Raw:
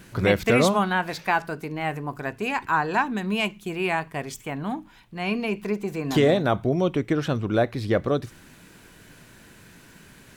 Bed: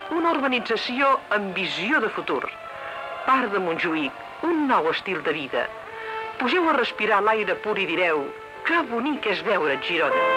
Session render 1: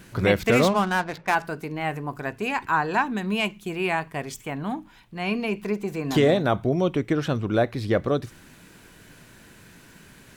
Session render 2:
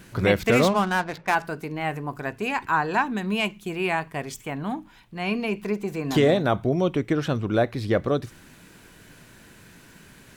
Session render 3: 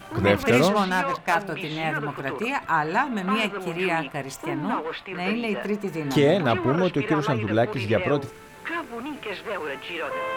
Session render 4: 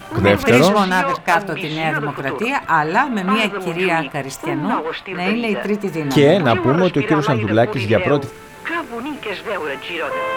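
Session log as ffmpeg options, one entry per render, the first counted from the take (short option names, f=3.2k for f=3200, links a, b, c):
-filter_complex "[0:a]asettb=1/sr,asplit=3[a][b][c];[a]atrim=end=0.524[d];[b]atrim=start=0.52:end=1.35,asetpts=PTS-STARTPTS,afade=t=in:d=0.004:c=qsin,afade=t=out:st=0.826:d=0.004:c=qsin,adynamicsmooth=sensitivity=5.5:basefreq=770[e];[c]atrim=start=1.346[f];[d][e]acrossfade=d=0.004:c1=hsin:c2=qsin[g];[g][f]acrossfade=d=0.004:c1=qsin:c2=hsin"
-af anull
-filter_complex "[1:a]volume=-8.5dB[a];[0:a][a]amix=inputs=2:normalize=0"
-af "volume=7dB,alimiter=limit=-1dB:level=0:latency=1"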